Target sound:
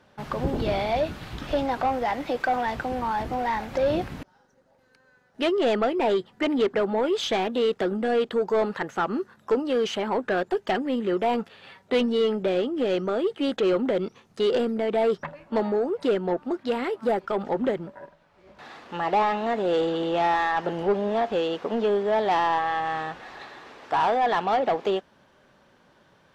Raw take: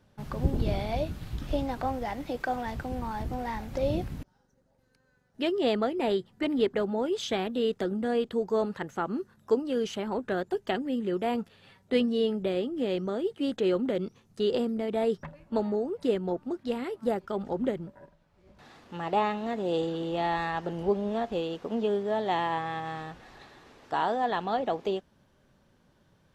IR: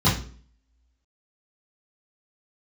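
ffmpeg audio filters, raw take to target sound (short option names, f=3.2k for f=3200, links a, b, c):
-filter_complex "[0:a]acontrast=29,asplit=2[a][b];[b]highpass=f=720:p=1,volume=18dB,asoftclip=type=tanh:threshold=-8dB[c];[a][c]amix=inputs=2:normalize=0,lowpass=f=2.5k:p=1,volume=-6dB,volume=-5dB"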